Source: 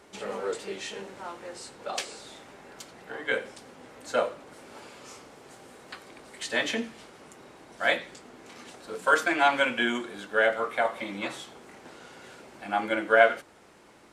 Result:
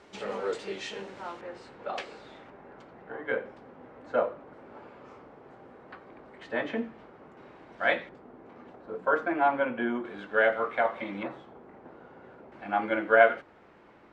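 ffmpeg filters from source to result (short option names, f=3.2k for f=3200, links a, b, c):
-af "asetnsamples=n=441:p=0,asendcmd='1.41 lowpass f 2300;2.5 lowpass f 1400;7.37 lowpass f 2400;8.09 lowpass f 1100;10.05 lowpass f 2400;11.23 lowpass f 1100;12.52 lowpass f 2200',lowpass=5.2k"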